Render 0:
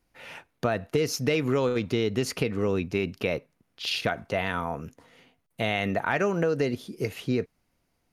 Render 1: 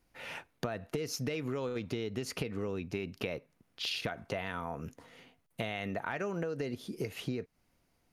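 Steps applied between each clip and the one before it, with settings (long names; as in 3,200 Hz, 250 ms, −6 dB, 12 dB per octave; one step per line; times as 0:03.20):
downward compressor, threshold −33 dBFS, peak gain reduction 12.5 dB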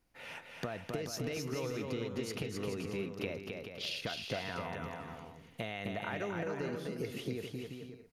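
bouncing-ball delay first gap 260 ms, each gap 0.65×, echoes 5
level −3.5 dB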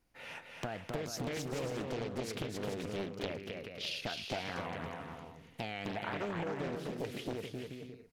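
highs frequency-modulated by the lows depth 0.89 ms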